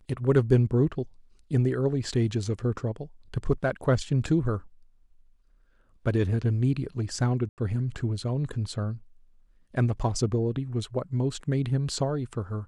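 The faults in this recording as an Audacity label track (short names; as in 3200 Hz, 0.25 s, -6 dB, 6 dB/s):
7.490000	7.580000	gap 88 ms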